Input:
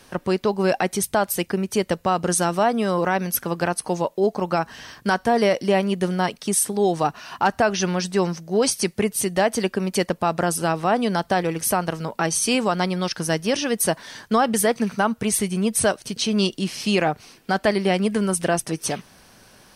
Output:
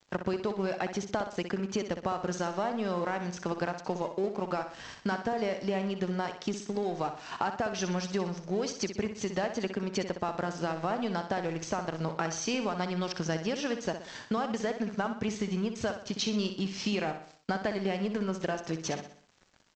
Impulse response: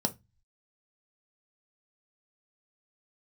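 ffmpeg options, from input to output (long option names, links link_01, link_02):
-af "highshelf=frequency=5100:gain=-5.5,acompressor=threshold=-28dB:ratio=6,aresample=16000,aeval=exprs='sgn(val(0))*max(abs(val(0))-0.00447,0)':channel_layout=same,aresample=44100,aecho=1:1:62|124|186|248|310:0.355|0.163|0.0751|0.0345|0.0159"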